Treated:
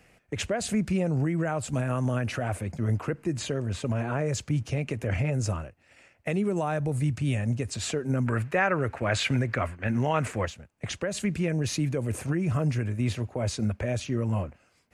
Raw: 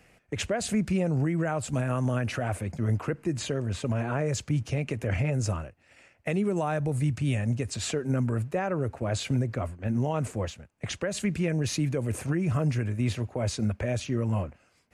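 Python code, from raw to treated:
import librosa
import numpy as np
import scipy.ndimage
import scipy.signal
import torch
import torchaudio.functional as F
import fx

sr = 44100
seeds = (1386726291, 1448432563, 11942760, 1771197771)

y = fx.peak_eq(x, sr, hz=1900.0, db=12.5, octaves=1.9, at=(8.26, 10.46))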